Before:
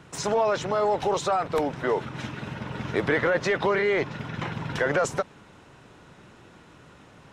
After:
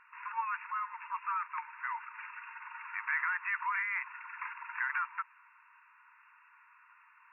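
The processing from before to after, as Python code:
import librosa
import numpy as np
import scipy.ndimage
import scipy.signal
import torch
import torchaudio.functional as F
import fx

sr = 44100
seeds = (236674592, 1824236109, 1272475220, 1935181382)

y = fx.brickwall_bandpass(x, sr, low_hz=890.0, high_hz=2800.0)
y = F.gain(torch.from_numpy(y), -4.5).numpy()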